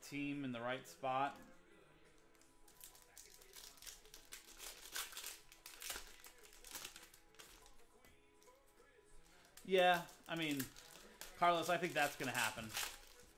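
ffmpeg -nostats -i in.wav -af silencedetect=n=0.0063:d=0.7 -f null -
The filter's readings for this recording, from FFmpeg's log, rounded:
silence_start: 1.31
silence_end: 2.84 | silence_duration: 1.53
silence_start: 7.40
silence_end: 9.57 | silence_duration: 2.17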